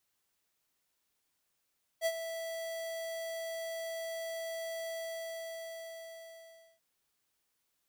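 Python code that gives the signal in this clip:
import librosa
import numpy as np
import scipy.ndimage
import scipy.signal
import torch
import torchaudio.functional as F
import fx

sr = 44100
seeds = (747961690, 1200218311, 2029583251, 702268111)

y = fx.adsr_tone(sr, wave='square', hz=658.0, attack_ms=51.0, decay_ms=54.0, sustain_db=-10.5, held_s=2.91, release_ms=1880.0, level_db=-29.0)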